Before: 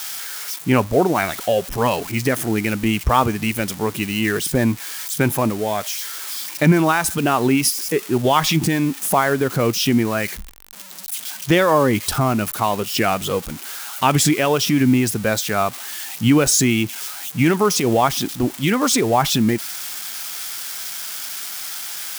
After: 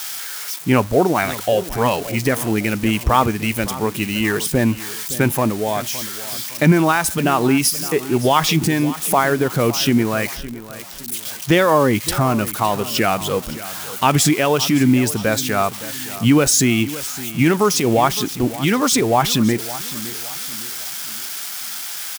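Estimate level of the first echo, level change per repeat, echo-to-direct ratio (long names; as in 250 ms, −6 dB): −16.0 dB, −8.0 dB, −15.5 dB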